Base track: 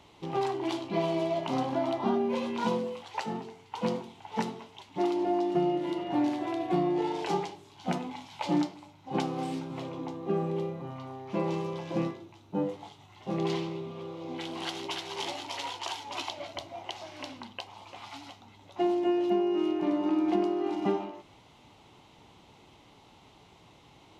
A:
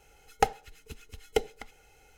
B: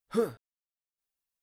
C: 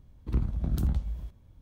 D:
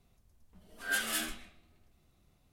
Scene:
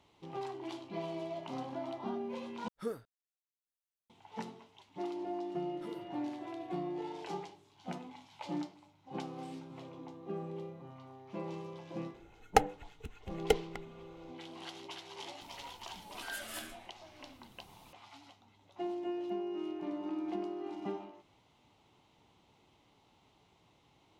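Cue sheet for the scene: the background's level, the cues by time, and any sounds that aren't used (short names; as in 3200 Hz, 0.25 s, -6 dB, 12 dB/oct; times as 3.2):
base track -11 dB
2.68 replace with B -10.5 dB
5.7 add B -10 dB + compressor 2:1, threshold -46 dBFS
12.14 add A -1 dB + Wiener smoothing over 9 samples
15.41 add D -6 dB + three-band squash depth 70%
not used: C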